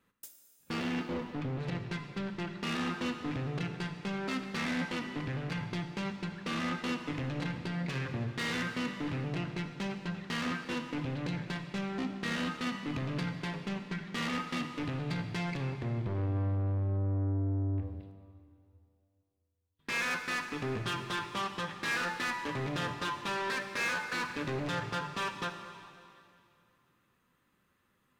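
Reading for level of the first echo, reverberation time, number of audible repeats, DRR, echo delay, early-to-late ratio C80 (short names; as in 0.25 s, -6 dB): none, 2.5 s, none, 6.0 dB, none, 8.0 dB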